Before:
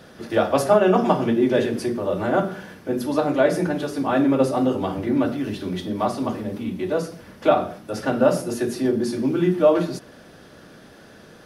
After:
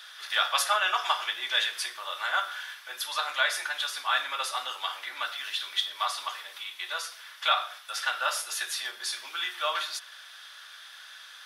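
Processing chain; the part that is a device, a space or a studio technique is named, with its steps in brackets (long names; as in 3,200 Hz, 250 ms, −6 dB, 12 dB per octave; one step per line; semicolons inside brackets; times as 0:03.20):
headphones lying on a table (high-pass filter 1,200 Hz 24 dB per octave; parametric band 3,500 Hz +9.5 dB 0.34 octaves)
level +3.5 dB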